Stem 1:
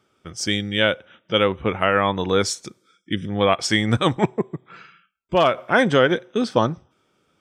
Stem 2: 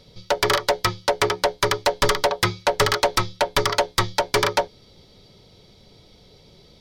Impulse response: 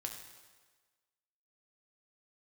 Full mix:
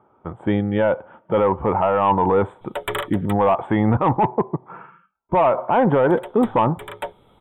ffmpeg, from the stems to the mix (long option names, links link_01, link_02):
-filter_complex "[0:a]lowpass=frequency=910:width_type=q:width=4.9,volume=-0.5dB,asplit=2[link_01][link_02];[1:a]adelay=2450,volume=-11dB,asplit=3[link_03][link_04][link_05];[link_03]atrim=end=3.33,asetpts=PTS-STARTPTS,afade=type=out:start_time=3.326:duration=0.004:curve=hsin[link_06];[link_04]atrim=start=3.33:end=6.07,asetpts=PTS-STARTPTS,volume=0[link_07];[link_05]atrim=start=6.07,asetpts=PTS-STARTPTS,afade=type=in:duration=0.004:curve=hsin[link_08];[link_06][link_07][link_08]concat=n=3:v=0:a=1[link_09];[link_02]apad=whole_len=408327[link_10];[link_09][link_10]sidechaincompress=threshold=-29dB:ratio=6:attack=7.2:release=323[link_11];[link_01][link_11]amix=inputs=2:normalize=0,acontrast=50,asuperstop=centerf=5300:order=12:qfactor=1.3,alimiter=limit=-9.5dB:level=0:latency=1:release=12"